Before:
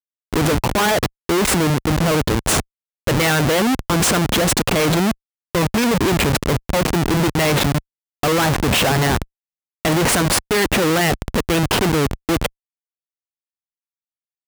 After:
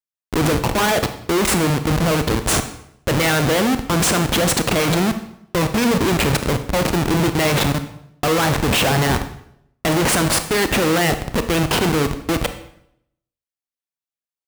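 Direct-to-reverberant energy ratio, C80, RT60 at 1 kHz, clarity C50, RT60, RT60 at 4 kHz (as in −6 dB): 8.5 dB, 13.5 dB, 0.70 s, 11.0 dB, 0.75 s, 0.60 s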